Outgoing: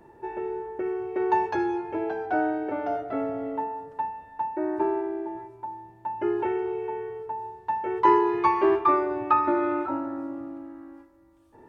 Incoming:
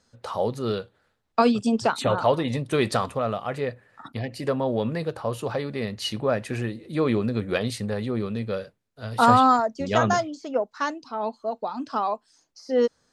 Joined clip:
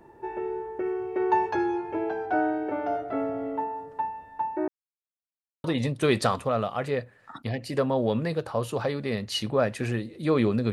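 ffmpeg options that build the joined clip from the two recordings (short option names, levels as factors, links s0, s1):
-filter_complex "[0:a]apad=whole_dur=10.72,atrim=end=10.72,asplit=2[s0][s1];[s0]atrim=end=4.68,asetpts=PTS-STARTPTS,afade=t=out:st=4.676:d=0.004:c=hsin[s2];[s1]atrim=start=4.68:end=5.64,asetpts=PTS-STARTPTS,volume=0[s3];[1:a]atrim=start=2.34:end=7.42,asetpts=PTS-STARTPTS,afade=t=in:d=0.004:c=hsin[s4];[s2][s3][s4]concat=n=3:v=0:a=1"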